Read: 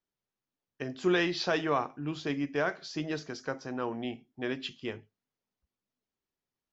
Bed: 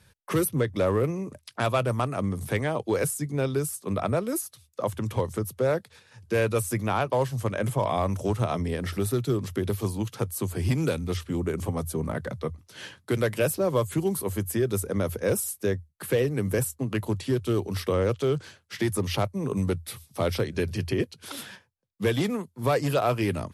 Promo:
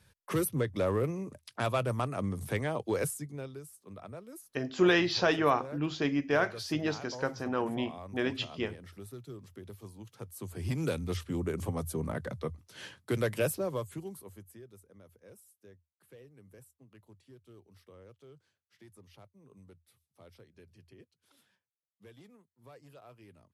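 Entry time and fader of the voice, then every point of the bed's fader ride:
3.75 s, +2.5 dB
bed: 3.04 s -5.5 dB
3.62 s -19.5 dB
9.98 s -19.5 dB
10.93 s -5 dB
13.46 s -5 dB
14.83 s -30 dB

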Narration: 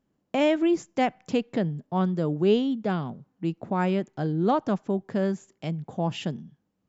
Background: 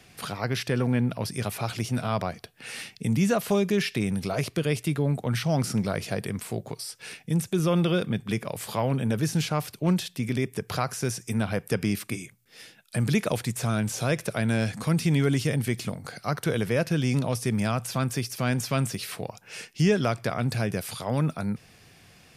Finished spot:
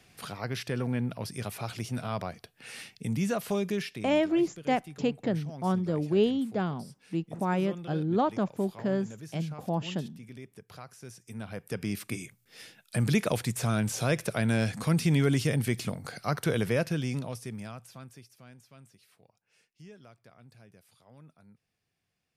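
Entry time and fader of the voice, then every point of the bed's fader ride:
3.70 s, -3.0 dB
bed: 3.73 s -6 dB
4.24 s -18.5 dB
11.01 s -18.5 dB
12.25 s -1.5 dB
16.7 s -1.5 dB
18.63 s -28.5 dB

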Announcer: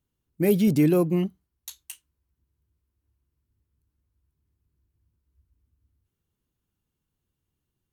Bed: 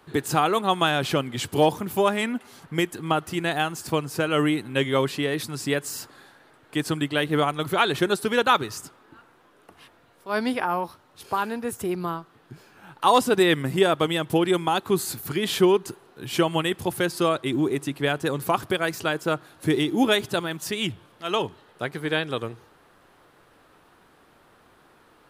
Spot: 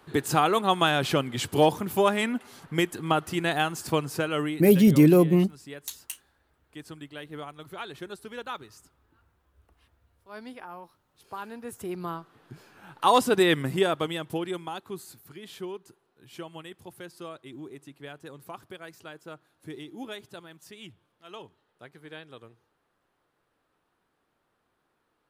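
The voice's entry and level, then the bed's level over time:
4.20 s, +3.0 dB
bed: 4.09 s -1 dB
4.99 s -17 dB
10.93 s -17 dB
12.39 s -2 dB
13.61 s -2 dB
15.29 s -18.5 dB

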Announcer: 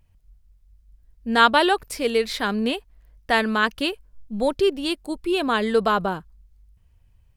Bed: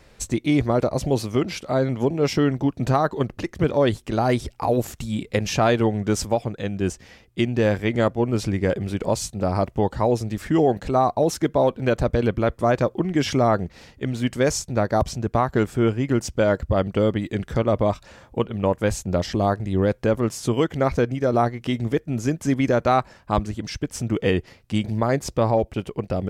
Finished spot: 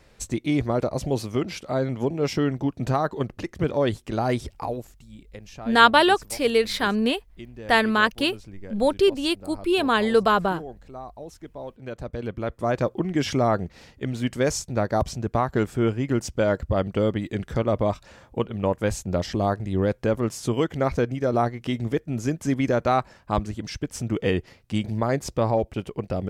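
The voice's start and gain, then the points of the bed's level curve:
4.40 s, +1.0 dB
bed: 4.6 s -3.5 dB
4.93 s -19.5 dB
11.51 s -19.5 dB
12.86 s -2.5 dB

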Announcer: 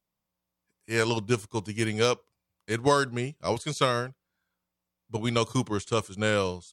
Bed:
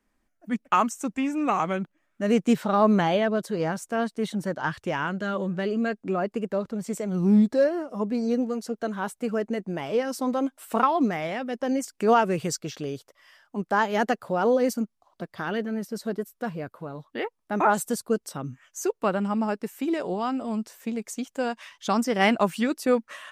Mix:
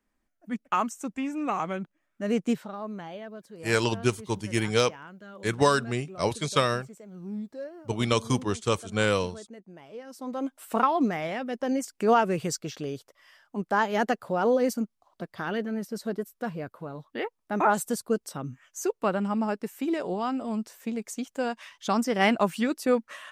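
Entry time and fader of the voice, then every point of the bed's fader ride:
2.75 s, +1.0 dB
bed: 2.5 s -4.5 dB
2.77 s -17 dB
9.99 s -17 dB
10.55 s -1.5 dB

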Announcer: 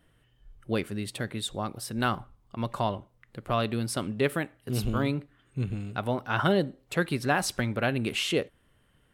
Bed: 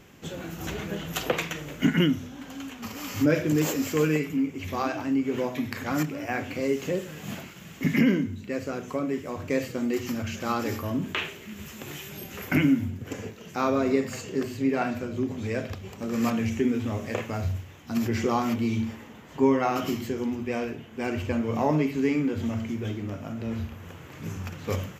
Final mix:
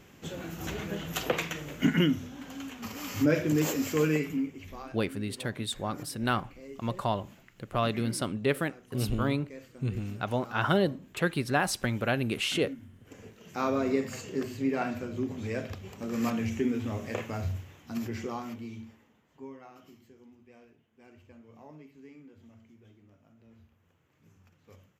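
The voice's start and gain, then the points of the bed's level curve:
4.25 s, -1.0 dB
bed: 4.31 s -2.5 dB
4.98 s -19.5 dB
12.93 s -19.5 dB
13.6 s -4 dB
17.67 s -4 dB
19.75 s -26.5 dB

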